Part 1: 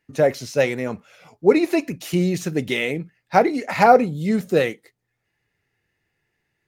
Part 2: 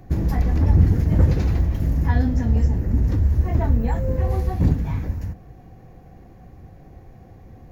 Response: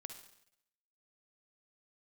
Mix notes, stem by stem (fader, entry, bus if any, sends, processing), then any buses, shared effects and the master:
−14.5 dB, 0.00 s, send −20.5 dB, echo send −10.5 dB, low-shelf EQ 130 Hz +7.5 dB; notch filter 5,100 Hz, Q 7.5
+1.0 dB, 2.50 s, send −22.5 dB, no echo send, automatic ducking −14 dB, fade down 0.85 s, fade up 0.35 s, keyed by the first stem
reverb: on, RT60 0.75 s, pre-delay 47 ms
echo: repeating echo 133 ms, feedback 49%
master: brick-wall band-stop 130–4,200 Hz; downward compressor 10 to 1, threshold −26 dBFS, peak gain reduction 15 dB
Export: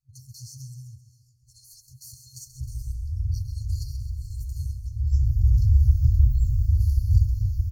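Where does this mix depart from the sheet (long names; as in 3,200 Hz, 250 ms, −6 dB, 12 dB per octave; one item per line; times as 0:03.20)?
stem 1 −14.5 dB → −6.5 dB
master: missing downward compressor 10 to 1, threshold −26 dBFS, peak gain reduction 15 dB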